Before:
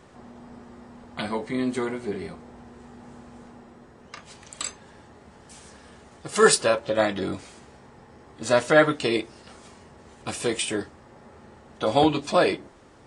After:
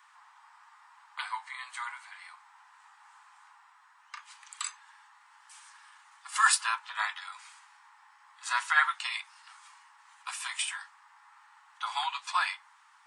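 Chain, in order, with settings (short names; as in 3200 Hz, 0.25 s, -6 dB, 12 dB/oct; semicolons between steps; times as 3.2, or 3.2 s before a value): steep high-pass 890 Hz 72 dB/oct; bell 5400 Hz -6 dB 2.2 oct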